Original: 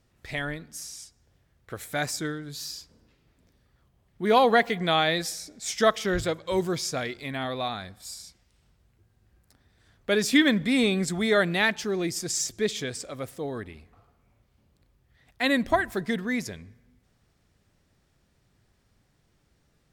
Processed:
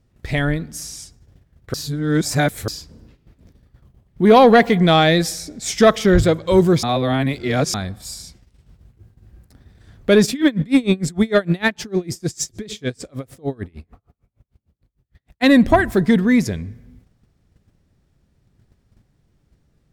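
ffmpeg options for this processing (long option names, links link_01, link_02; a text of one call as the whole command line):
ffmpeg -i in.wav -filter_complex "[0:a]asplit=3[link_01][link_02][link_03];[link_01]afade=type=out:start_time=10.25:duration=0.02[link_04];[link_02]aeval=exprs='val(0)*pow(10,-29*(0.5-0.5*cos(2*PI*6.6*n/s))/20)':channel_layout=same,afade=type=in:start_time=10.25:duration=0.02,afade=type=out:start_time=15.42:duration=0.02[link_05];[link_03]afade=type=in:start_time=15.42:duration=0.02[link_06];[link_04][link_05][link_06]amix=inputs=3:normalize=0,asplit=5[link_07][link_08][link_09][link_10][link_11];[link_07]atrim=end=1.742[link_12];[link_08]atrim=start=1.738:end=2.682,asetpts=PTS-STARTPTS,areverse[link_13];[link_09]atrim=start=2.678:end=6.832[link_14];[link_10]atrim=start=6.828:end=7.742,asetpts=PTS-STARTPTS,areverse[link_15];[link_11]atrim=start=7.738[link_16];[link_12][link_13]acrossfade=duration=0.004:curve1=hsin:curve2=hsin[link_17];[link_17][link_14]acrossfade=duration=0.004:curve1=hsin:curve2=hsin[link_18];[link_18][link_15]acrossfade=duration=0.004:curve1=hsin:curve2=hsin[link_19];[link_19][link_16]acrossfade=duration=0.004:curve1=hsin:curve2=hsin,lowshelf=frequency=440:gain=11,agate=range=-10dB:threshold=-54dB:ratio=16:detection=peak,acontrast=78" out.wav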